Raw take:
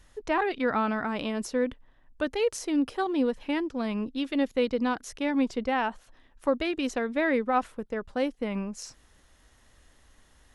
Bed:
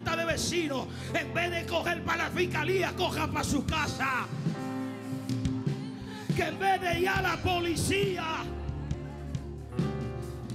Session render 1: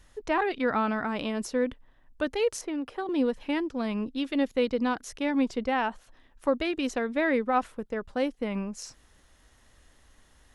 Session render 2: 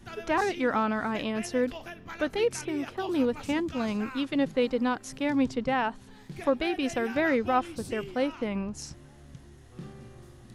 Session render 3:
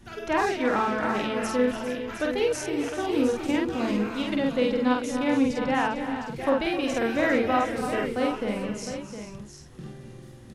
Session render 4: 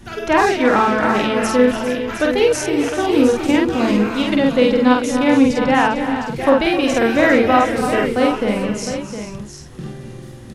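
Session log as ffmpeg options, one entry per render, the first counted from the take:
ffmpeg -i in.wav -filter_complex "[0:a]asettb=1/sr,asplit=3[link_01][link_02][link_03];[link_01]atrim=end=2.614[link_04];[link_02]atrim=start=2.61:end=3.09,asetpts=PTS-STARTPTS,afade=type=in:duration=0.004:curve=qsin,afade=type=out:start_time=0.476:duration=0.004:curve=qsin,acrossover=split=450|2700[link_05][link_06][link_07];[link_05]acompressor=threshold=-35dB:ratio=4[link_08];[link_06]acompressor=threshold=-34dB:ratio=4[link_09];[link_07]acompressor=threshold=-58dB:ratio=4[link_10];[link_08][link_09][link_10]amix=inputs=3:normalize=0[link_11];[link_03]atrim=start=3.086[link_12];[link_04][link_11]acrossfade=duration=0.004:curve1=hsin:curve2=qsin[link_13];[link_13][link_12]acrossfade=duration=0.004:curve1=qsin:curve2=hsin" out.wav
ffmpeg -i in.wav -i bed.wav -filter_complex "[1:a]volume=-12.5dB[link_01];[0:a][link_01]amix=inputs=2:normalize=0" out.wav
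ffmpeg -i in.wav -filter_complex "[0:a]asplit=2[link_01][link_02];[link_02]adelay=48,volume=-2dB[link_03];[link_01][link_03]amix=inputs=2:normalize=0,asplit=2[link_04][link_05];[link_05]aecho=0:1:258|290|401|709:0.15|0.237|0.251|0.335[link_06];[link_04][link_06]amix=inputs=2:normalize=0" out.wav
ffmpeg -i in.wav -af "volume=10dB,alimiter=limit=-1dB:level=0:latency=1" out.wav

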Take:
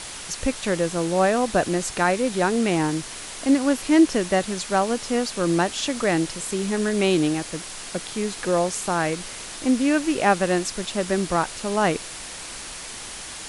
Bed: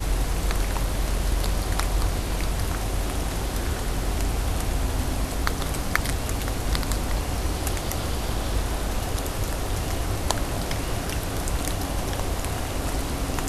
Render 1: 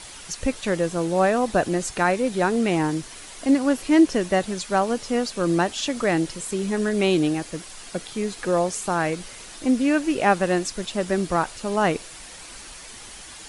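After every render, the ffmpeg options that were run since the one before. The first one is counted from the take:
ffmpeg -i in.wav -af "afftdn=noise_reduction=7:noise_floor=-36" out.wav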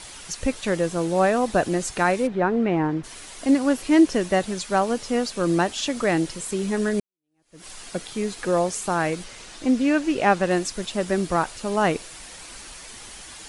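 ffmpeg -i in.wav -filter_complex "[0:a]asplit=3[link_01][link_02][link_03];[link_01]afade=type=out:start_time=2.26:duration=0.02[link_04];[link_02]lowpass=1900,afade=type=in:start_time=2.26:duration=0.02,afade=type=out:start_time=3.03:duration=0.02[link_05];[link_03]afade=type=in:start_time=3.03:duration=0.02[link_06];[link_04][link_05][link_06]amix=inputs=3:normalize=0,asettb=1/sr,asplit=3[link_07][link_08][link_09];[link_07]atrim=end=9.244[link_10];[link_08]atrim=start=9.24:end=10.51,asetpts=PTS-STARTPTS,afade=type=in:duration=0.004:curve=qsin,afade=type=out:start_time=1.266:duration=0.004:curve=qsin,acrossover=split=8200[link_11][link_12];[link_12]acompressor=threshold=-58dB:ratio=4:attack=1:release=60[link_13];[link_11][link_13]amix=inputs=2:normalize=0[link_14];[link_09]atrim=start=10.506[link_15];[link_10][link_14]acrossfade=duration=0.004:curve1=hsin:curve2=qsin[link_16];[link_16][link_15]acrossfade=duration=0.004:curve1=qsin:curve2=hsin,asplit=2[link_17][link_18];[link_17]atrim=end=7,asetpts=PTS-STARTPTS,afade=type=out:start_time=6.996:duration=0.004:curve=hsin[link_19];[link_18]atrim=start=7,asetpts=PTS-STARTPTS,afade=type=in:duration=0.66:curve=exp[link_20];[link_19][link_20]concat=n=2:v=0:a=1" out.wav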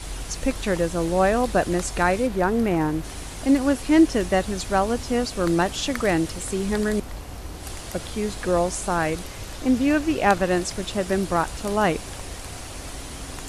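ffmpeg -i in.wav -i bed.wav -filter_complex "[1:a]volume=-9.5dB[link_01];[0:a][link_01]amix=inputs=2:normalize=0" out.wav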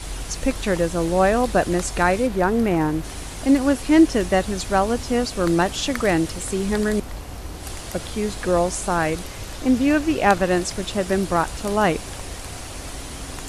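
ffmpeg -i in.wav -af "volume=2dB" out.wav

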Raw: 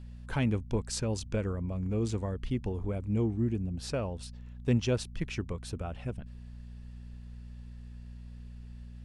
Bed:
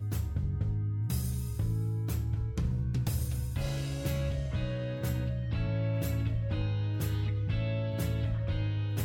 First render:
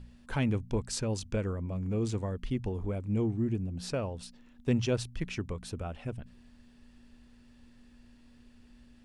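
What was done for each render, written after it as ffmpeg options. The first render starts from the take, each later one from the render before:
ffmpeg -i in.wav -af "bandreject=frequency=60:width_type=h:width=4,bandreject=frequency=120:width_type=h:width=4,bandreject=frequency=180:width_type=h:width=4" out.wav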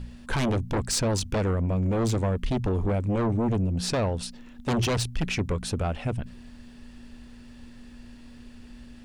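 ffmpeg -i in.wav -filter_complex "[0:a]asplit=2[link_01][link_02];[link_02]aeval=exprs='0.141*sin(PI/2*5.01*val(0)/0.141)':channel_layout=same,volume=-9dB[link_03];[link_01][link_03]amix=inputs=2:normalize=0,aeval=exprs='0.2*(cos(1*acos(clip(val(0)/0.2,-1,1)))-cos(1*PI/2))+0.0631*(cos(2*acos(clip(val(0)/0.2,-1,1)))-cos(2*PI/2))+0.0251*(cos(4*acos(clip(val(0)/0.2,-1,1)))-cos(4*PI/2))+0.00891*(cos(5*acos(clip(val(0)/0.2,-1,1)))-cos(5*PI/2))+0.00794*(cos(7*acos(clip(val(0)/0.2,-1,1)))-cos(7*PI/2))':channel_layout=same" out.wav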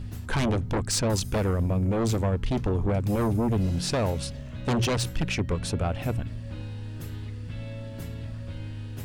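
ffmpeg -i in.wav -i bed.wav -filter_complex "[1:a]volume=-5.5dB[link_01];[0:a][link_01]amix=inputs=2:normalize=0" out.wav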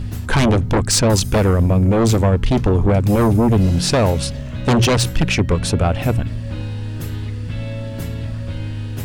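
ffmpeg -i in.wav -af "volume=10.5dB" out.wav

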